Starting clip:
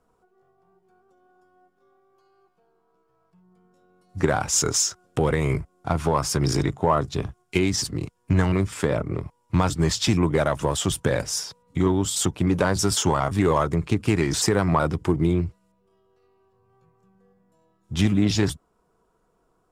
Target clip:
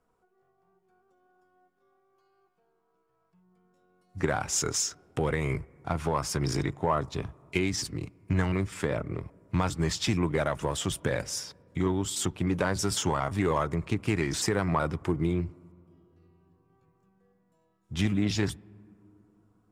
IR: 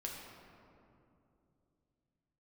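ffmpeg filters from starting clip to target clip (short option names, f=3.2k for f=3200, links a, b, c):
-filter_complex "[0:a]equalizer=f=2.1k:t=o:w=0.98:g=4,asplit=2[a][b];[1:a]atrim=start_sample=2205,lowpass=2.6k[c];[b][c]afir=irnorm=-1:irlink=0,volume=-21.5dB[d];[a][d]amix=inputs=2:normalize=0,volume=-7dB"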